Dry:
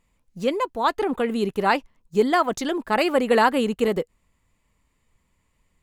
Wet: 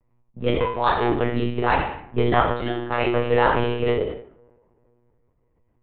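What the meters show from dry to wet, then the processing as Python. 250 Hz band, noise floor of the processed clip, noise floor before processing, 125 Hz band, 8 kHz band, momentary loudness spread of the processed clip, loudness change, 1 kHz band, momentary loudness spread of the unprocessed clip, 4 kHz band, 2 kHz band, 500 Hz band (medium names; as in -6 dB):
-1.5 dB, -67 dBFS, -70 dBFS, +12.0 dB, under -40 dB, 8 LU, 0.0 dB, +0.5 dB, 8 LU, -1.0 dB, +0.5 dB, 0.0 dB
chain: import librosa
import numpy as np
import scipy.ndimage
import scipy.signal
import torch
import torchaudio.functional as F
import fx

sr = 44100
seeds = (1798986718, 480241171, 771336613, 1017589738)

p1 = x + fx.room_flutter(x, sr, wall_m=4.3, rt60_s=0.61, dry=0)
p2 = fx.rider(p1, sr, range_db=10, speed_s=2.0)
p3 = np.clip(p2, -10.0 ** (-18.0 / 20.0), 10.0 ** (-18.0 / 20.0))
p4 = p2 + (p3 * 10.0 ** (-11.5 / 20.0))
p5 = fx.rev_double_slope(p4, sr, seeds[0], early_s=0.93, late_s=3.1, knee_db=-18, drr_db=14.5)
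p6 = fx.env_lowpass(p5, sr, base_hz=900.0, full_db=-12.5)
p7 = fx.lpc_monotone(p6, sr, seeds[1], pitch_hz=120.0, order=16)
y = p7 * 10.0 ** (-4.5 / 20.0)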